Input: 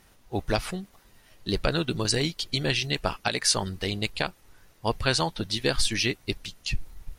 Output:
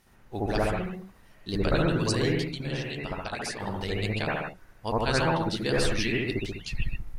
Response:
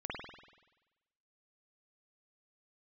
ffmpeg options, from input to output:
-filter_complex "[0:a]asettb=1/sr,asplit=3[s0][s1][s2];[s0]atrim=end=2.404[s3];[s1]atrim=start=2.4:end=3.6,asetpts=PTS-STARTPTS,afade=t=in:d=0.004:c=qsin,afade=t=out:st=1.196:d=0.004:c=qsin,acompressor=threshold=0.0355:ratio=6[s4];[s2]atrim=start=3.596[s5];[s3][s4]acrossfade=d=0.004:c1=hsin:c2=qsin[s6];[s6][s5]acrossfade=d=0.004:c1=qsin:c2=hsin[s7];[1:a]atrim=start_sample=2205,afade=t=out:st=0.24:d=0.01,atrim=end_sample=11025,asetrate=31752,aresample=44100[s8];[s7][s8]afir=irnorm=-1:irlink=0,volume=0.75"

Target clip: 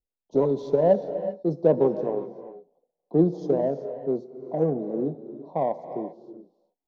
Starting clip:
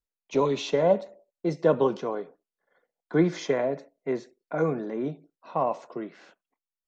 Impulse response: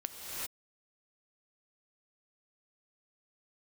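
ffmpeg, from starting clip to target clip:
-filter_complex "[0:a]asuperstop=centerf=1900:order=8:qfactor=0.57,adynamicsmooth=sensitivity=1.5:basefreq=2000,asplit=2[s0][s1];[1:a]atrim=start_sample=2205[s2];[s1][s2]afir=irnorm=-1:irlink=0,volume=0.376[s3];[s0][s3]amix=inputs=2:normalize=0"

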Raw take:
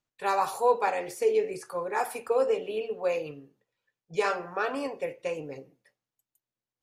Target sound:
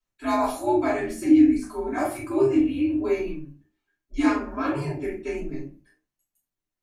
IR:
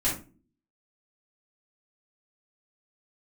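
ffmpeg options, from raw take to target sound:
-filter_complex "[0:a]highpass=120,afreqshift=-130[s0];[1:a]atrim=start_sample=2205,afade=t=out:st=0.24:d=0.01,atrim=end_sample=11025[s1];[s0][s1]afir=irnorm=-1:irlink=0,volume=0.422"

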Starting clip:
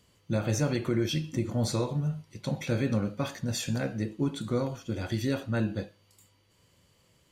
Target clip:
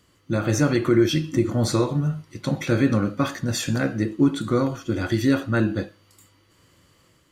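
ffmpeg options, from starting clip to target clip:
-af "superequalizer=6b=2:10b=2:11b=1.58,dynaudnorm=f=340:g=3:m=1.5,volume=1.33"

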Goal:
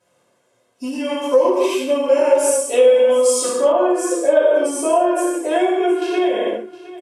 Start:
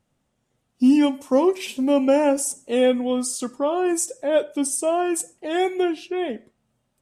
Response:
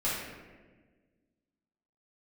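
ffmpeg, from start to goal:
-filter_complex "[1:a]atrim=start_sample=2205,afade=t=out:st=0.22:d=0.01,atrim=end_sample=10143,asetrate=26019,aresample=44100[s0];[0:a][s0]afir=irnorm=-1:irlink=0,dynaudnorm=f=220:g=7:m=3.76,asettb=1/sr,asplit=3[s1][s2][s3];[s1]atrim=end=3.724[s4];[s2]atrim=start=3.72:end=6.02,asetpts=PTS-STARTPTS,afade=t=in:d=0.004:c=qsin,afade=t=out:st=2.296:d=0.004:c=qsin,highshelf=f=2800:g=-10[s5];[s3]atrim=start=6.016[s6];[s4][s5]acrossfade=d=0.004:c1=hsin:c2=qsin[s7];[s7][s6]acrossfade=d=0.004:c1=qsin:c2=hsin,acompressor=threshold=0.158:ratio=6,highpass=310,aecho=1:1:1.9:0.58,aecho=1:1:713:0.133,volume=1.58"

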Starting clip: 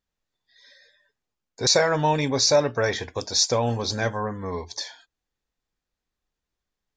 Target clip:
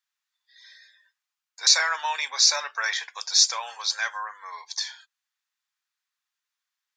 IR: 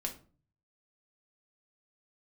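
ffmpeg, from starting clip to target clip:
-af "highpass=f=1100:w=0.5412,highpass=f=1100:w=1.3066,volume=1.41"

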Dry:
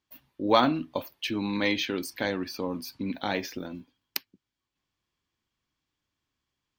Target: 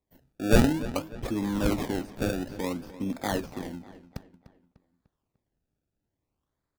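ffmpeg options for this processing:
-filter_complex "[0:a]acrossover=split=5600[s0][s1];[s1]acompressor=threshold=0.00224:ratio=4:attack=1:release=60[s2];[s0][s2]amix=inputs=2:normalize=0,bass=f=250:g=-2,treble=f=4000:g=-8,acrossover=split=320|6300[s3][s4][s5];[s4]acrusher=samples=29:mix=1:aa=0.000001:lfo=1:lforange=29:lforate=0.56[s6];[s3][s6][s5]amix=inputs=3:normalize=0,lowshelf=f=150:g=7,asplit=2[s7][s8];[s8]adelay=298,lowpass=f=4200:p=1,volume=0.168,asplit=2[s9][s10];[s10]adelay=298,lowpass=f=4200:p=1,volume=0.46,asplit=2[s11][s12];[s12]adelay=298,lowpass=f=4200:p=1,volume=0.46,asplit=2[s13][s14];[s14]adelay=298,lowpass=f=4200:p=1,volume=0.46[s15];[s7][s9][s11][s13][s15]amix=inputs=5:normalize=0"

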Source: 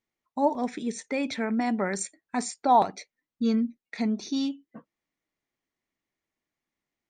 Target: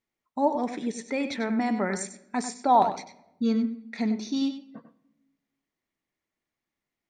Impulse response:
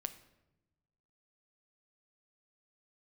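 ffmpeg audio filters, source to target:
-filter_complex "[0:a]highshelf=f=6800:g=-4,asplit=2[s0][s1];[1:a]atrim=start_sample=2205,lowpass=7000,adelay=96[s2];[s1][s2]afir=irnorm=-1:irlink=0,volume=0.422[s3];[s0][s3]amix=inputs=2:normalize=0"

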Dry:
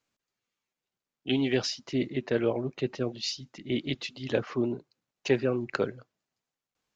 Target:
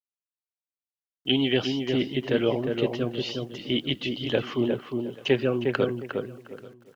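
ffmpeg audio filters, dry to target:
-filter_complex "[0:a]acrossover=split=3000[s0][s1];[s1]acompressor=threshold=0.00447:ratio=4:attack=1:release=60[s2];[s0][s2]amix=inputs=2:normalize=0,equalizer=f=3100:t=o:w=0.29:g=14,asplit=2[s3][s4];[s4]adelay=357,lowpass=f=1400:p=1,volume=0.631,asplit=2[s5][s6];[s6]adelay=357,lowpass=f=1400:p=1,volume=0.25,asplit=2[s7][s8];[s8]adelay=357,lowpass=f=1400:p=1,volume=0.25[s9];[s5][s7][s9]amix=inputs=3:normalize=0[s10];[s3][s10]amix=inputs=2:normalize=0,acrusher=bits=10:mix=0:aa=0.000001,asplit=2[s11][s12];[s12]aecho=0:1:834:0.0794[s13];[s11][s13]amix=inputs=2:normalize=0,volume=1.33"

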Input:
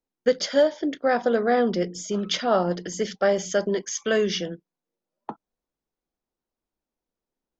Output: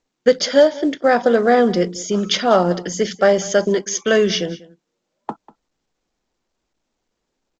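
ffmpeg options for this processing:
-filter_complex "[0:a]asplit=2[s0][s1];[s1]aecho=0:1:194:0.1[s2];[s0][s2]amix=inputs=2:normalize=0,volume=2.24" -ar 16000 -c:a pcm_mulaw

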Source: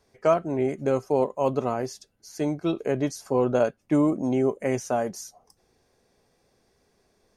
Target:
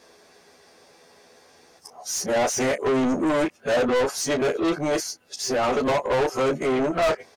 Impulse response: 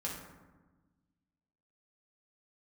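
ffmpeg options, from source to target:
-filter_complex "[0:a]areverse,aecho=1:1:12|34:0.668|0.2,asplit=2[s0][s1];[s1]highpass=f=720:p=1,volume=35.5,asoftclip=type=tanh:threshold=0.562[s2];[s0][s2]amix=inputs=2:normalize=0,lowpass=f=6000:p=1,volume=0.501,volume=0.355"

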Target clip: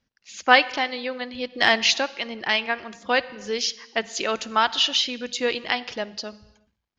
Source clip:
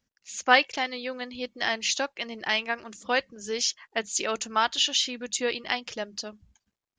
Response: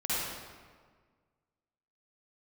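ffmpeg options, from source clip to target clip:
-filter_complex "[0:a]lowpass=f=5400:w=0.5412,lowpass=f=5400:w=1.3066,asplit=3[s0][s1][s2];[s0]afade=t=out:st=1.51:d=0.02[s3];[s1]acontrast=38,afade=t=in:st=1.51:d=0.02,afade=t=out:st=1.91:d=0.02[s4];[s2]afade=t=in:st=1.91:d=0.02[s5];[s3][s4][s5]amix=inputs=3:normalize=0,asplit=2[s6][s7];[1:a]atrim=start_sample=2205,afade=t=out:st=0.42:d=0.01,atrim=end_sample=18963[s8];[s7][s8]afir=irnorm=-1:irlink=0,volume=0.0562[s9];[s6][s9]amix=inputs=2:normalize=0,volume=1.5"

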